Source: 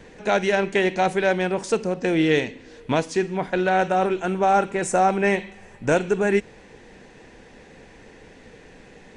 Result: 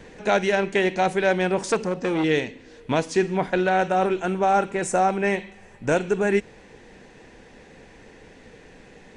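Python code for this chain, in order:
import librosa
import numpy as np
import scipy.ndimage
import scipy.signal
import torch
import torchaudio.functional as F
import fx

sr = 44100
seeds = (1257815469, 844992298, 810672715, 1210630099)

y = fx.rider(x, sr, range_db=10, speed_s=0.5)
y = fx.transformer_sat(y, sr, knee_hz=1100.0, at=(1.72, 2.24))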